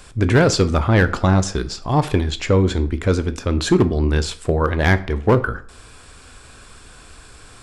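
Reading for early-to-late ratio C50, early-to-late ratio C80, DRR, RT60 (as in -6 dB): 16.5 dB, 20.0 dB, 11.5 dB, 0.50 s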